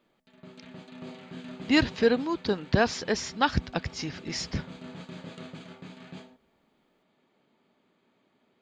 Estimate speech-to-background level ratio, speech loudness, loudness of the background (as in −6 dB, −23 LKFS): 18.0 dB, −27.5 LKFS, −45.5 LKFS